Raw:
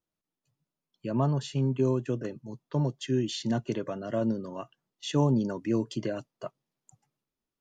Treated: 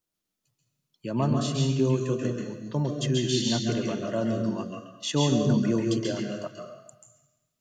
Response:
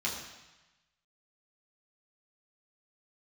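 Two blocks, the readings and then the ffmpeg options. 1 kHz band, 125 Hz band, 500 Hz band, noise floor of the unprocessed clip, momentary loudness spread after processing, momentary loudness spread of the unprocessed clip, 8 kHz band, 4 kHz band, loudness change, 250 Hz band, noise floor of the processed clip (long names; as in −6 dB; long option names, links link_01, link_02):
+2.0 dB, +3.0 dB, +2.5 dB, below −85 dBFS, 11 LU, 15 LU, +10.0 dB, +8.5 dB, +3.0 dB, +3.5 dB, −84 dBFS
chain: -filter_complex "[0:a]highshelf=frequency=3300:gain=8.5,asplit=2[link_01][link_02];[link_02]asuperstop=centerf=870:order=20:qfactor=2.8[link_03];[1:a]atrim=start_sample=2205,adelay=134[link_04];[link_03][link_04]afir=irnorm=-1:irlink=0,volume=-5.5dB[link_05];[link_01][link_05]amix=inputs=2:normalize=0"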